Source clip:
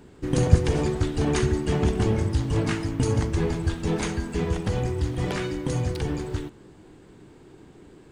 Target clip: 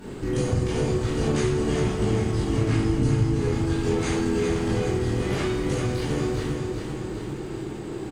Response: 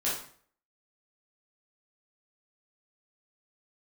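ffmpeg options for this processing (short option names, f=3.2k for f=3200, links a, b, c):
-filter_complex "[0:a]asettb=1/sr,asplit=3[a][b][c];[a]atrim=end=2.644[d];[b]atrim=start=2.64:end=3.3,asetpts=PTS-STARTPTS,afade=t=in:d=0.004:c=qsin,afade=t=out:st=0.656:d=0.004:c=qsin,lowshelf=f=250:g=10.5[e];[c]atrim=start=3.296[f];[d][e]acrossfade=d=0.004:c1=hsin:c2=qsin[g];[g][f]acrossfade=d=0.004:c1=qsin:c2=hsin[h];[1:a]atrim=start_sample=2205,asetrate=34398,aresample=44100[i];[h][i]afir=irnorm=-1:irlink=0,acompressor=threshold=-35dB:ratio=2.5,aecho=1:1:394|788|1182|1576|1970|2364|2758:0.501|0.286|0.163|0.0928|0.0529|0.0302|0.0172,volume=5dB"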